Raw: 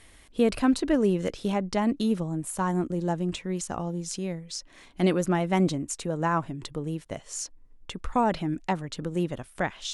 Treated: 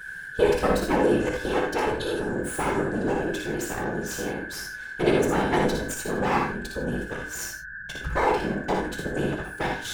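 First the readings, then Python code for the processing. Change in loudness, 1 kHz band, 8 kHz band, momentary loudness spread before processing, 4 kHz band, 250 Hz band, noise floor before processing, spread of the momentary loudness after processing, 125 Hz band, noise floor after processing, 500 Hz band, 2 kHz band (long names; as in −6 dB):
+2.0 dB, +3.0 dB, +0.5 dB, 12 LU, +2.0 dB, −1.5 dB, −54 dBFS, 10 LU, −2.0 dB, −38 dBFS, +4.5 dB, +9.5 dB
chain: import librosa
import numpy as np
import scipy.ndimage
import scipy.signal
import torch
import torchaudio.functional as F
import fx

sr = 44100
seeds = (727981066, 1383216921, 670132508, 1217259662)

p1 = fx.lower_of_two(x, sr, delay_ms=2.3)
p2 = p1 + 10.0 ** (-38.0 / 20.0) * np.sin(2.0 * np.pi * 1600.0 * np.arange(len(p1)) / sr)
p3 = fx.whisperise(p2, sr, seeds[0])
p4 = p3 + fx.room_early_taps(p3, sr, ms=(58, 78), db=(-5.0, -8.0), dry=0)
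y = fx.rev_gated(p4, sr, seeds[1], gate_ms=120, shape='flat', drr_db=4.5)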